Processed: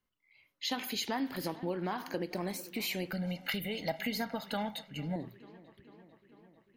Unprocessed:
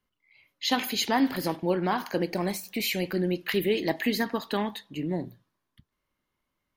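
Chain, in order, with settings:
feedback echo with a low-pass in the loop 446 ms, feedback 71%, low-pass 4,600 Hz, level −22 dB
downward compressor 3 to 1, threshold −27 dBFS, peak gain reduction 6.5 dB
0:03.11–0:05.16: comb filter 1.4 ms, depth 90%
level −5 dB

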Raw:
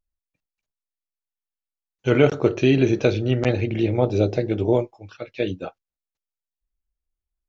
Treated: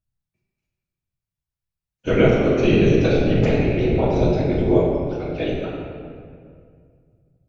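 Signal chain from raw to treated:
random phases in short frames
convolution reverb RT60 2.2 s, pre-delay 6 ms, DRR −4.5 dB
level −4 dB

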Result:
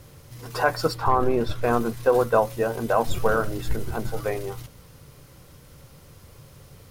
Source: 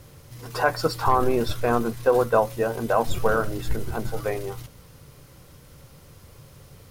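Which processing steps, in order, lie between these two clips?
0:00.93–0:01.62: high-shelf EQ 3,100 Hz → 4,600 Hz −10.5 dB

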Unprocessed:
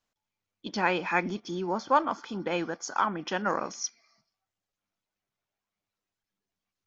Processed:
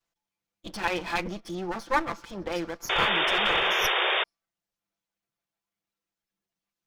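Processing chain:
lower of the sound and its delayed copy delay 5.9 ms
sound drawn into the spectrogram noise, 0:02.89–0:04.24, 340–3,700 Hz −25 dBFS

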